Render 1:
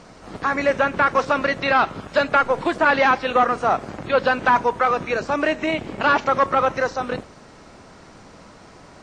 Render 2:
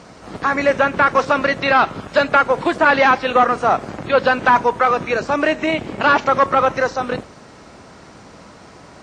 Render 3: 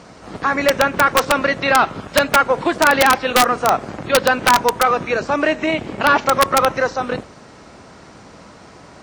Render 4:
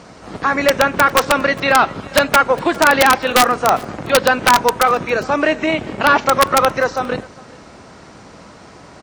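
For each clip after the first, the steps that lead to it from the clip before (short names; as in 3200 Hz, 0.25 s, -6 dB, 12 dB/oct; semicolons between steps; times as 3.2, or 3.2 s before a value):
HPF 50 Hz; gain +3.5 dB
wrapped overs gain 5 dB
echo 0.404 s -23.5 dB; gain +1.5 dB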